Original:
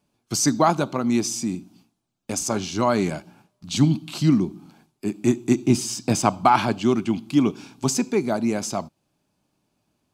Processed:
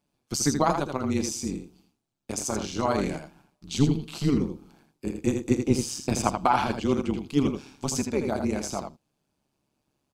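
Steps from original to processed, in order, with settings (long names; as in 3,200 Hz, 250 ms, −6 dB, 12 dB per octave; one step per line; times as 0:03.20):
amplitude modulation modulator 140 Hz, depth 65%
on a send: single-tap delay 81 ms −6.5 dB
on the sum: level −2 dB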